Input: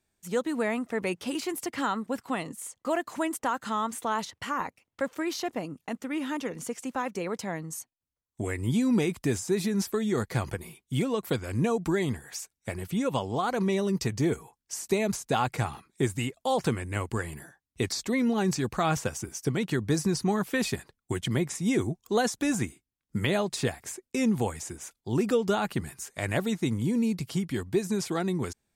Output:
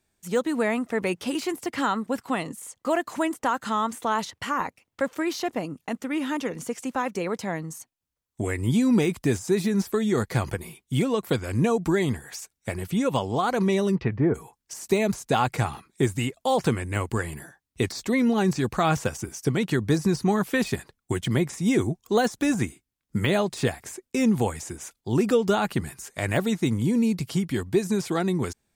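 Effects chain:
0:13.94–0:14.34: low-pass filter 3,300 Hz → 1,500 Hz 24 dB per octave
de-essing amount 80%
level +4 dB

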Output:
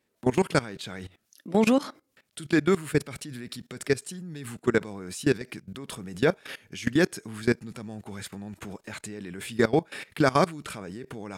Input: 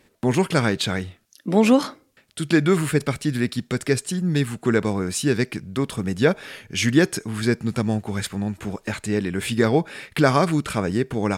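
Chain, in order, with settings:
low-shelf EQ 74 Hz −11 dB
output level in coarse steps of 19 dB
high-shelf EQ 12,000 Hz +3.5 dB

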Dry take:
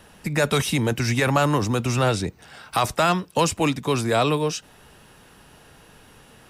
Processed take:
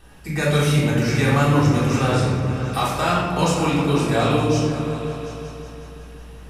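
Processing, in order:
mains hum 60 Hz, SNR 27 dB
echo whose low-pass opens from repeat to repeat 183 ms, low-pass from 200 Hz, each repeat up 2 octaves, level −6 dB
rectangular room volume 850 cubic metres, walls mixed, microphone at 3.6 metres
level −7 dB

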